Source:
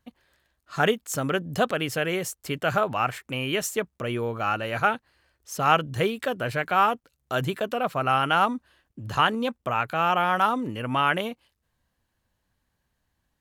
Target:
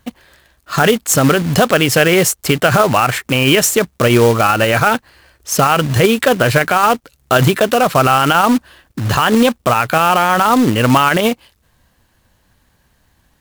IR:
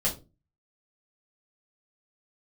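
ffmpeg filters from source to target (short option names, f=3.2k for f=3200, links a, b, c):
-af "acrusher=bits=3:mode=log:mix=0:aa=0.000001,alimiter=level_in=19dB:limit=-1dB:release=50:level=0:latency=1,volume=-1dB"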